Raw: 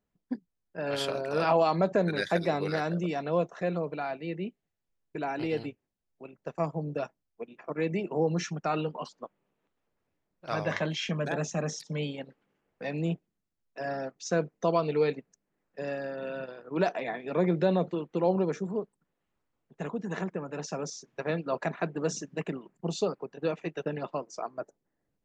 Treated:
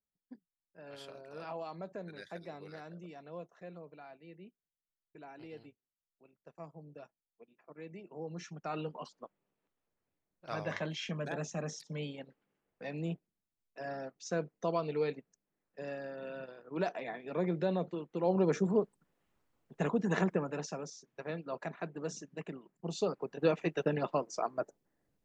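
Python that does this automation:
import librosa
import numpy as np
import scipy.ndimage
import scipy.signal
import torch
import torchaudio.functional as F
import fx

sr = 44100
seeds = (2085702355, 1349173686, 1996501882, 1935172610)

y = fx.gain(x, sr, db=fx.line((8.07, -18.0), (8.87, -7.0), (18.18, -7.0), (18.58, 3.0), (20.36, 3.0), (20.89, -9.0), (22.75, -9.0), (23.35, 1.5)))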